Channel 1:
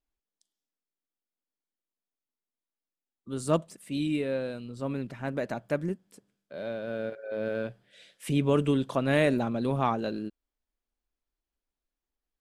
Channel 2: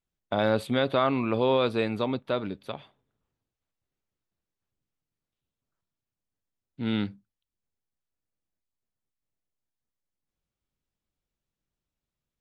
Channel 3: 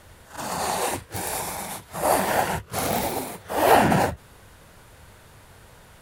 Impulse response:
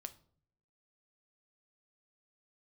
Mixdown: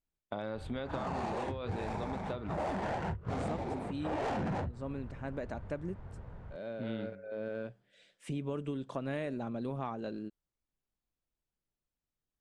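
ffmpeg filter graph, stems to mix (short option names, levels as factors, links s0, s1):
-filter_complex "[0:a]volume=0.501[s0];[1:a]bandreject=f=96.38:t=h:w=4,bandreject=f=192.76:t=h:w=4,bandreject=f=289.14:t=h:w=4,bandreject=f=385.52:t=h:w=4,bandreject=f=481.9:t=h:w=4,bandreject=f=578.28:t=h:w=4,bandreject=f=674.66:t=h:w=4,bandreject=f=771.04:t=h:w=4,bandreject=f=867.42:t=h:w=4,bandreject=f=963.8:t=h:w=4,bandreject=f=1060.18:t=h:w=4,bandreject=f=1156.56:t=h:w=4,bandreject=f=1252.94:t=h:w=4,bandreject=f=1349.32:t=h:w=4,bandreject=f=1445.7:t=h:w=4,bandreject=f=1542.08:t=h:w=4,bandreject=f=1638.46:t=h:w=4,bandreject=f=1734.84:t=h:w=4,bandreject=f=1831.22:t=h:w=4,bandreject=f=1927.6:t=h:w=4,bandreject=f=2023.98:t=h:w=4,bandreject=f=2120.36:t=h:w=4,bandreject=f=2216.74:t=h:w=4,bandreject=f=2313.12:t=h:w=4,bandreject=f=2409.5:t=h:w=4,bandreject=f=2505.88:t=h:w=4,bandreject=f=2602.26:t=h:w=4,acompressor=threshold=0.0562:ratio=6,volume=0.473[s1];[2:a]lowshelf=f=200:g=10.5,asoftclip=type=tanh:threshold=0.126,adynamicsmooth=sensitivity=3:basefreq=1600,adelay=550,volume=0.708[s2];[s0][s1][s2]amix=inputs=3:normalize=0,lowpass=f=8000:t=q:w=1.6,highshelf=f=3200:g=-9.5,acompressor=threshold=0.0224:ratio=6"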